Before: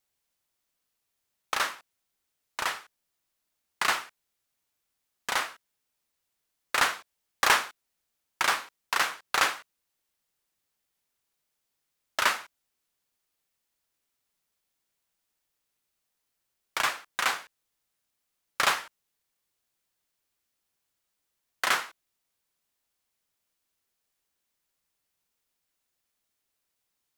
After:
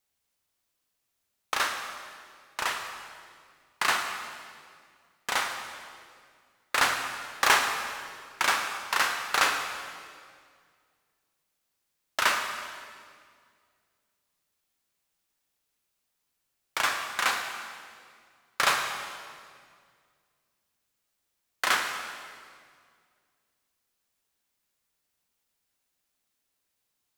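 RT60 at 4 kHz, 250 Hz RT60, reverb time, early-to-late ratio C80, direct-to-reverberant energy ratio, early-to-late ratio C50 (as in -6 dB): 1.8 s, 2.3 s, 2.0 s, 6.5 dB, 4.0 dB, 5.0 dB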